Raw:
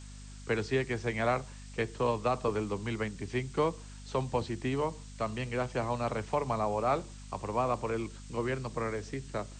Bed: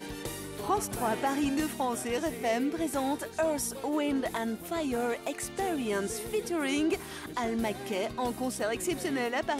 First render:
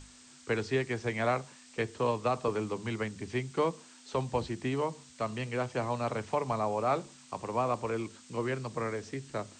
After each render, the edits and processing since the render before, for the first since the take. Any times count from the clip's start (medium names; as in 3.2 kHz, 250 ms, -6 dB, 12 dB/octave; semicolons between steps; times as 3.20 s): hum notches 50/100/150/200 Hz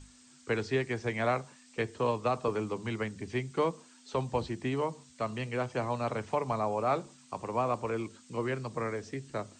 noise reduction 6 dB, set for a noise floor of -56 dBFS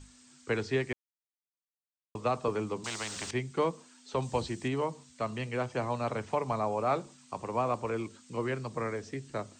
0.93–2.15 s: mute; 2.84–3.31 s: spectrum-flattening compressor 4:1; 4.22–4.68 s: treble shelf 4.4 kHz +10 dB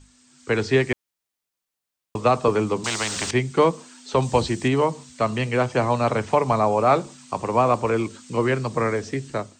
level rider gain up to 11.5 dB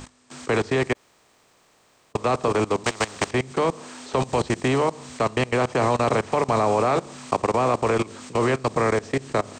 spectral levelling over time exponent 0.6; level held to a coarse grid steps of 20 dB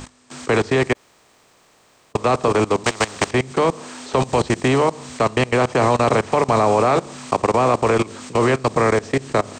trim +4.5 dB; peak limiter -2 dBFS, peak gain reduction 1.5 dB